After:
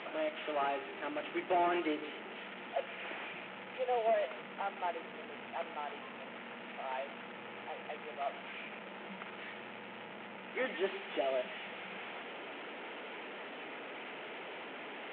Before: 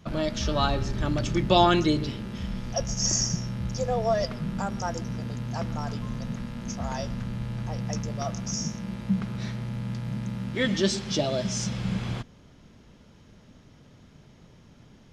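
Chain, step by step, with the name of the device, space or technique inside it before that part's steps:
digital answering machine (band-pass filter 390–3,300 Hz; linear delta modulator 16 kbit/s, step −34 dBFS; loudspeaker in its box 400–3,900 Hz, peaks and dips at 570 Hz −4 dB, 1,100 Hz −7 dB, 1,600 Hz −4 dB)
level −1.5 dB

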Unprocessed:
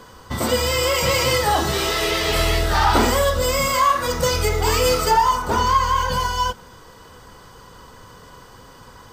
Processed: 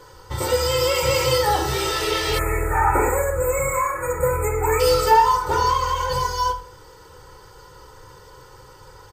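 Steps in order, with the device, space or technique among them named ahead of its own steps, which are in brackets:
microphone above a desk (comb filter 2.2 ms, depth 82%; convolution reverb RT60 0.45 s, pre-delay 3 ms, DRR 5.5 dB)
time-frequency box erased 0:02.39–0:04.80, 2,600–6,600 Hz
level −5 dB

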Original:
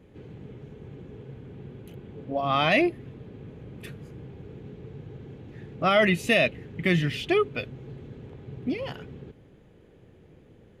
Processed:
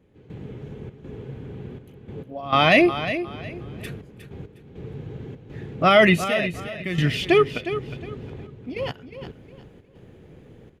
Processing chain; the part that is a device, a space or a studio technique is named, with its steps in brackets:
trance gate with a delay (gate pattern "..xxxx.xxxxx..x" 101 BPM −12 dB; repeating echo 360 ms, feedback 26%, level −11 dB)
level +6 dB

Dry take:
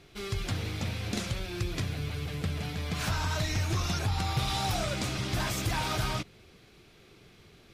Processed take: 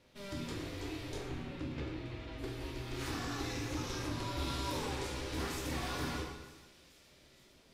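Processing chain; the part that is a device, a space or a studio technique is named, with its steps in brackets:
0:01.16–0:02.37: low-pass filter 2,200 Hz → 4,100 Hz 12 dB per octave
delay with a high-pass on its return 463 ms, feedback 71%, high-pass 2,700 Hz, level −18 dB
alien voice (ring modulation 200 Hz; flanger 1.3 Hz, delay 4 ms, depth 1.5 ms, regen −76%)
dense smooth reverb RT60 1.2 s, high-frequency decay 0.75×, DRR −1.5 dB
level −4 dB

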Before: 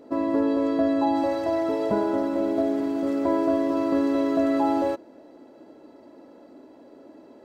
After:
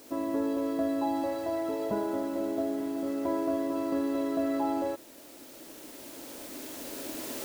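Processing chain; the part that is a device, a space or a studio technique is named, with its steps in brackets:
cheap recorder with automatic gain (white noise bed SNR 23 dB; camcorder AGC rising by 6.1 dB per second)
level −7 dB

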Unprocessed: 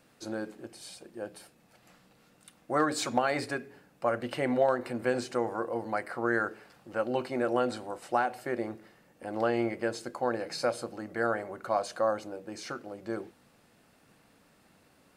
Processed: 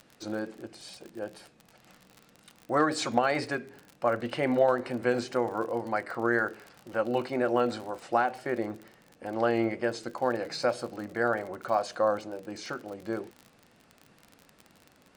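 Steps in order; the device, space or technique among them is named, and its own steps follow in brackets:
lo-fi chain (low-pass filter 6,900 Hz 12 dB per octave; tape wow and flutter 47 cents; surface crackle 47 per second −39 dBFS)
level +2 dB

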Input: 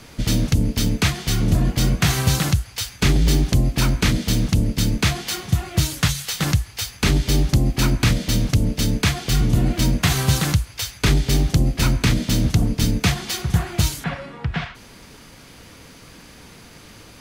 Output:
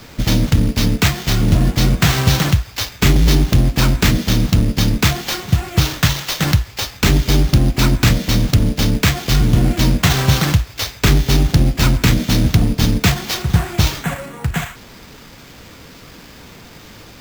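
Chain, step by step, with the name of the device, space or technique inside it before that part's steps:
early companding sampler (sample-rate reduction 9,800 Hz, jitter 0%; log-companded quantiser 6 bits)
level +4.5 dB

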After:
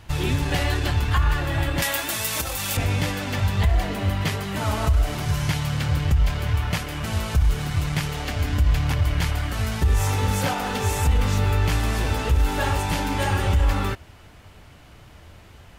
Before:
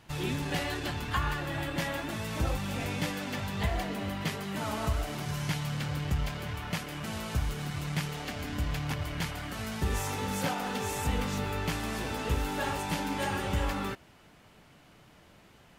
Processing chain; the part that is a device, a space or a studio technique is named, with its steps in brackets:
car stereo with a boomy subwoofer (low shelf with overshoot 120 Hz +9 dB, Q 1.5; brickwall limiter −19 dBFS, peak gain reduction 8.5 dB)
0:01.82–0:02.77: RIAA equalisation recording
level +7.5 dB

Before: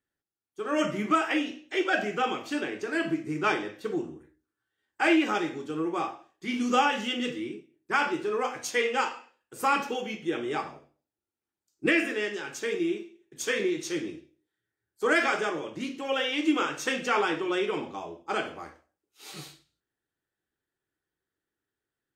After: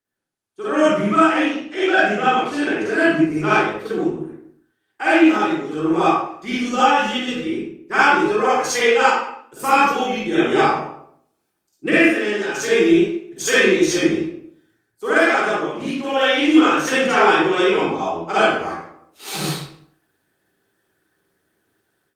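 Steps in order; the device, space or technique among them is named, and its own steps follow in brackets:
0:04.07–0:05.01: hum removal 61.16 Hz, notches 6
far-field microphone of a smart speaker (convolution reverb RT60 0.60 s, pre-delay 44 ms, DRR −9.5 dB; high-pass filter 110 Hz 12 dB per octave; automatic gain control gain up to 13.5 dB; level −1.5 dB; Opus 32 kbit/s 48,000 Hz)

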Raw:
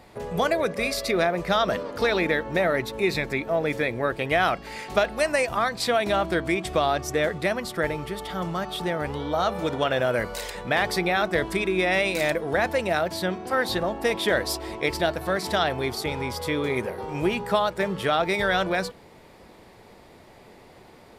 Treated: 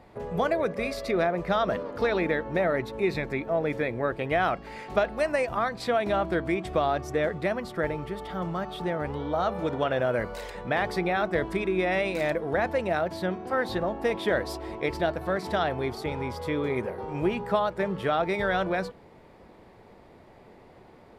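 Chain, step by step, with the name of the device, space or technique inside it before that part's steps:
through cloth (high-shelf EQ 3,000 Hz −13 dB)
level −1.5 dB

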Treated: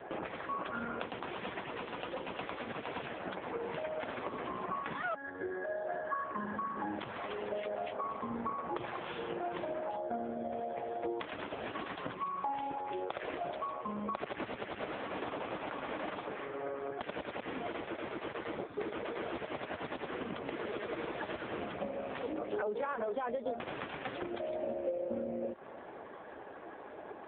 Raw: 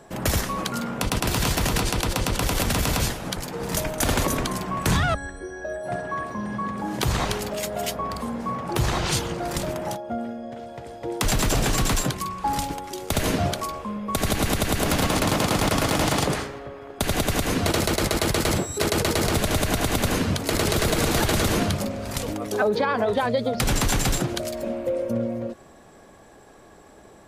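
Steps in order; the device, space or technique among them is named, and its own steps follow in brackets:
0:12.76–0:13.44: high-pass filter 290 Hz 12 dB per octave
voicemail (band-pass filter 310–2,700 Hz; downward compressor 6 to 1, threshold −40 dBFS, peak gain reduction 19.5 dB; level +6.5 dB; AMR narrowband 4.75 kbit/s 8,000 Hz)

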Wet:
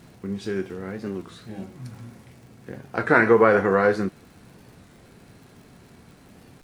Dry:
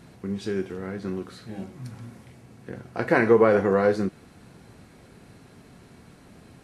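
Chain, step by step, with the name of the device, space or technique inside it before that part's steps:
dynamic equaliser 1,500 Hz, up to +7 dB, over −38 dBFS, Q 1
warped LP (wow of a warped record 33 1/3 rpm, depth 160 cents; surface crackle 110 per second −44 dBFS; pink noise bed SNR 42 dB)

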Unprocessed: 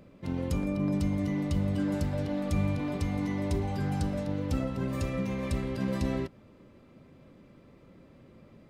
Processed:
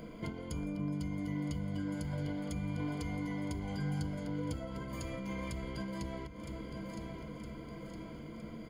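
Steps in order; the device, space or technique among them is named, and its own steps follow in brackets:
parametric band 110 Hz −5.5 dB 0.64 octaves
mains-hum notches 50/100 Hz
repeating echo 963 ms, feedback 46%, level −19 dB
serial compression, leveller first (downward compressor 2 to 1, threshold −33 dBFS, peak gain reduction 5 dB; downward compressor 5 to 1, threshold −45 dBFS, peak gain reduction 14 dB)
EQ curve with evenly spaced ripples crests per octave 1.8, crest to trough 15 dB
level +6.5 dB

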